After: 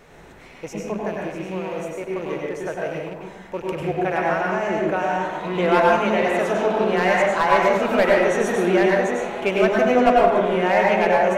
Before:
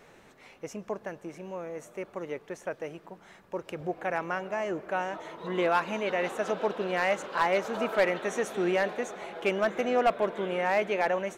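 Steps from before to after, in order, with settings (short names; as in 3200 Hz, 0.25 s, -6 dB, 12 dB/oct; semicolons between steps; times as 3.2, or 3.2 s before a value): rattling part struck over -51 dBFS, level -38 dBFS; low shelf 110 Hz +9 dB; plate-style reverb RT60 1 s, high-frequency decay 0.4×, pre-delay 85 ms, DRR -3 dB; gain +4.5 dB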